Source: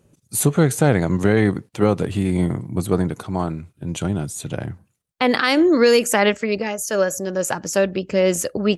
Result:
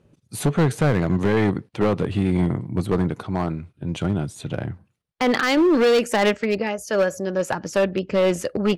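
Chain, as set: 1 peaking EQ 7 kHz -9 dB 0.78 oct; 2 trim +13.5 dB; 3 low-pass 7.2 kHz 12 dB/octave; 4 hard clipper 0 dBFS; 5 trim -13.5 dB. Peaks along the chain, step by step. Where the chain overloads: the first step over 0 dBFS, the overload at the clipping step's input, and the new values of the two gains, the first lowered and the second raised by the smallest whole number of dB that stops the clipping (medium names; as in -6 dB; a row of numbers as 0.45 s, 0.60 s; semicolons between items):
-4.5 dBFS, +9.0 dBFS, +9.0 dBFS, 0.0 dBFS, -13.5 dBFS; step 2, 9.0 dB; step 2 +4.5 dB, step 5 -4.5 dB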